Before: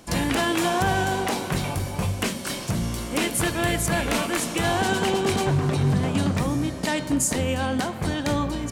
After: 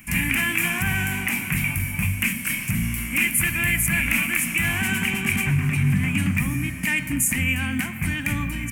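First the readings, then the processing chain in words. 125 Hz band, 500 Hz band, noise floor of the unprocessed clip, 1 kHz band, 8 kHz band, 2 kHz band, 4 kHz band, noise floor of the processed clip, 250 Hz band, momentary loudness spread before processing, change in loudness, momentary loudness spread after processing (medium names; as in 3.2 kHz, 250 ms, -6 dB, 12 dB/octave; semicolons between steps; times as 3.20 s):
+1.5 dB, -16.0 dB, -33 dBFS, -10.0 dB, +2.5 dB, +7.0 dB, -2.0 dB, -31 dBFS, -1.5 dB, 5 LU, +2.0 dB, 5 LU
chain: FFT filter 240 Hz 0 dB, 460 Hz -24 dB, 1.4 kHz -4 dB, 2.4 kHz +14 dB, 3.9 kHz -17 dB, 13 kHz +12 dB; in parallel at 0 dB: peak limiter -15.5 dBFS, peak gain reduction 9 dB; on the sum: trim -4 dB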